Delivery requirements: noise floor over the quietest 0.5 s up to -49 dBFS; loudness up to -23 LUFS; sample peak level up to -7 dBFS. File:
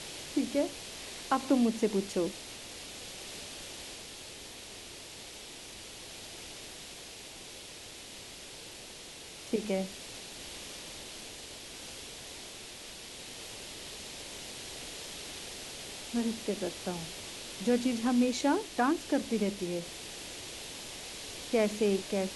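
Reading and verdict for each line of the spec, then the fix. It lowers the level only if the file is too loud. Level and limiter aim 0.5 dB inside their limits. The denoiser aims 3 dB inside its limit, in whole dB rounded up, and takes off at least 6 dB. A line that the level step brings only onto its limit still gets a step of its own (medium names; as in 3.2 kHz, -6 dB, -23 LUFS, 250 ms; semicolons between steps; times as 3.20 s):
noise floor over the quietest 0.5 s -47 dBFS: fail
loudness -35.5 LUFS: pass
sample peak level -13.5 dBFS: pass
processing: noise reduction 6 dB, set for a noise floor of -47 dBFS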